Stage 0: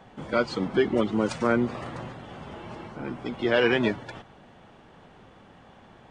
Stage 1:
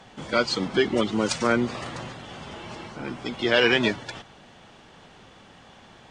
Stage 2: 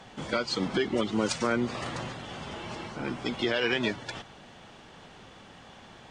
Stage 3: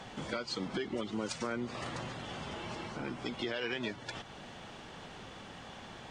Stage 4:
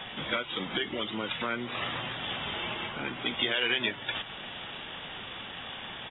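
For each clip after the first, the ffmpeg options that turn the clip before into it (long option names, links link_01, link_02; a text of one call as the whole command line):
ffmpeg -i in.wav -af "equalizer=frequency=5900:width_type=o:width=2.5:gain=12" out.wav
ffmpeg -i in.wav -af "alimiter=limit=-16dB:level=0:latency=1:release=334" out.wav
ffmpeg -i in.wav -af "acompressor=threshold=-44dB:ratio=2,volume=2dB" out.wav
ffmpeg -i in.wav -af "aresample=8000,aresample=44100,crystalizer=i=10:c=0" -ar 16000 -c:a aac -b:a 16k out.aac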